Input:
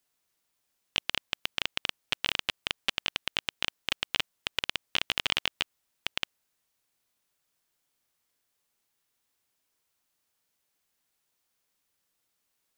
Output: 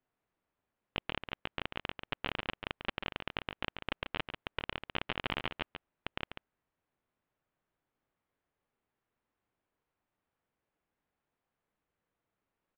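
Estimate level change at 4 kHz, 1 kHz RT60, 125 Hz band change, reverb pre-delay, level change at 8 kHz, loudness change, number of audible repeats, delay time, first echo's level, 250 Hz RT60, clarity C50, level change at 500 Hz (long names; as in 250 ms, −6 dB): −12.0 dB, no reverb audible, +3.5 dB, no reverb audible, below −35 dB, −8.0 dB, 1, 141 ms, −8.0 dB, no reverb audible, no reverb audible, +1.5 dB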